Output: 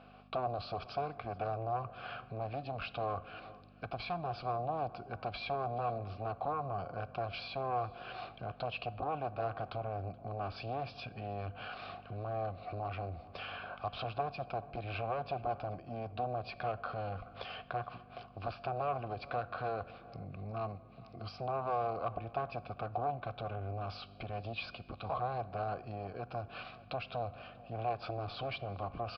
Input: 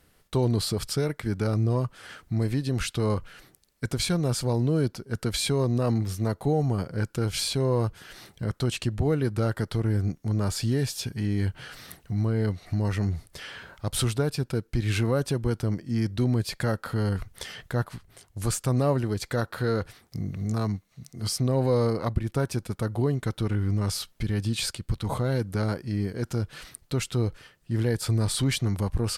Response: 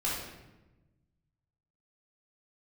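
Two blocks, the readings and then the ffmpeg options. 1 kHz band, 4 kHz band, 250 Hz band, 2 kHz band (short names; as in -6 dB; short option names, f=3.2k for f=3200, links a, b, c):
+1.5 dB, -14.5 dB, -20.0 dB, -8.0 dB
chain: -filter_complex "[0:a]lowshelf=f=120:g=5,aeval=exprs='0.251*sin(PI/2*2.51*val(0)/0.251)':c=same,asplit=2[a][b];[1:a]atrim=start_sample=2205,asetrate=43218,aresample=44100[c];[b][c]afir=irnorm=-1:irlink=0,volume=-23.5dB[d];[a][d]amix=inputs=2:normalize=0,aresample=11025,aresample=44100,acrossover=split=120[e][f];[f]acompressor=threshold=-36dB:ratio=2.5[g];[e][g]amix=inputs=2:normalize=0,equalizer=f=1.5k:w=8:g=5,asplit=2[h][i];[i]adelay=425.7,volume=-20dB,highshelf=f=4k:g=-9.58[j];[h][j]amix=inputs=2:normalize=0,aeval=exprs='val(0)+0.02*(sin(2*PI*50*n/s)+sin(2*PI*2*50*n/s)/2+sin(2*PI*3*50*n/s)/3+sin(2*PI*4*50*n/s)/4+sin(2*PI*5*50*n/s)/5)':c=same,asplit=3[k][l][m];[k]bandpass=f=730:t=q:w=8,volume=0dB[n];[l]bandpass=f=1.09k:t=q:w=8,volume=-6dB[o];[m]bandpass=f=2.44k:t=q:w=8,volume=-9dB[p];[n][o][p]amix=inputs=3:normalize=0,volume=6.5dB"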